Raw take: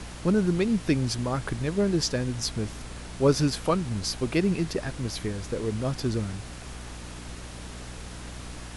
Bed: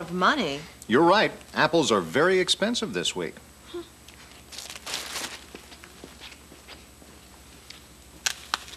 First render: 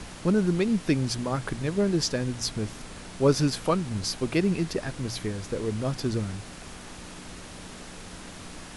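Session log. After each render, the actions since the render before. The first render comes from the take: de-hum 60 Hz, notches 2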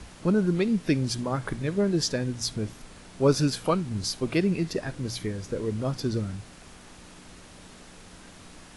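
noise print and reduce 6 dB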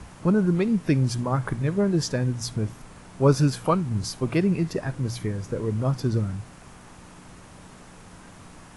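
graphic EQ 125/1000/4000 Hz +7/+5/-5 dB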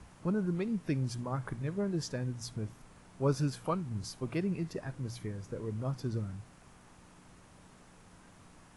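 trim -11 dB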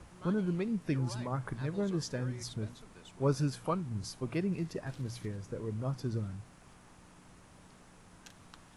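add bed -29 dB

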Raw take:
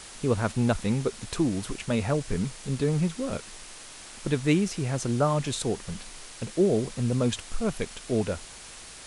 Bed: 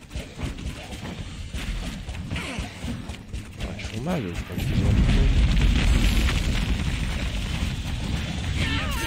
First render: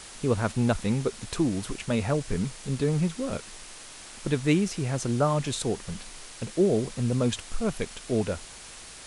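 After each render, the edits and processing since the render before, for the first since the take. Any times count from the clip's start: no audible change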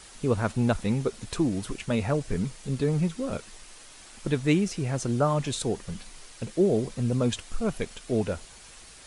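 noise reduction 6 dB, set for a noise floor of -45 dBFS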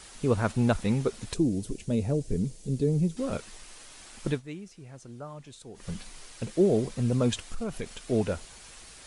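1.34–3.17 s: FFT filter 440 Hz 0 dB, 1.2 kHz -19 dB, 6.6 kHz -3 dB; 4.29–5.87 s: dip -17.5 dB, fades 0.13 s; 7.52–8.02 s: compression, threshold -28 dBFS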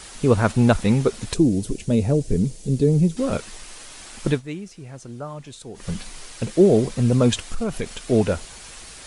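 trim +8 dB

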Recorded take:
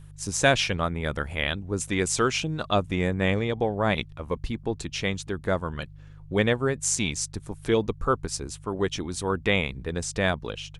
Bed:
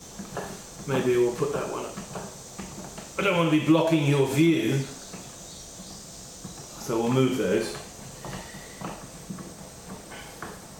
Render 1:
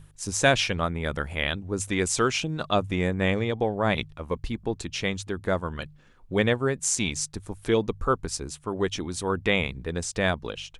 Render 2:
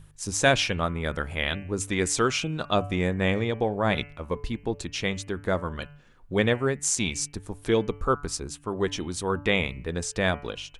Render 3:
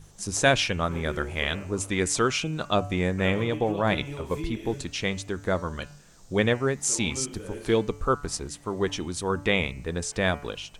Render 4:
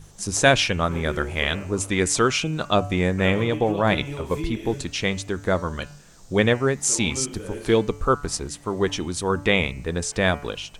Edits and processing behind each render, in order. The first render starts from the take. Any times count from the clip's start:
de-hum 50 Hz, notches 3
de-hum 144.4 Hz, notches 21
add bed -15 dB
trim +4 dB

